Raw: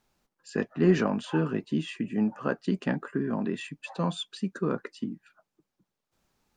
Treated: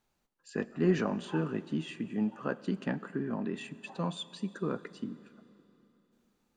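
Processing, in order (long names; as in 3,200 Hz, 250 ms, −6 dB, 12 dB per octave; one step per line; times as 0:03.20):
notch filter 5,200 Hz, Q 16
four-comb reverb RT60 3.3 s, combs from 30 ms, DRR 16.5 dB
level −5 dB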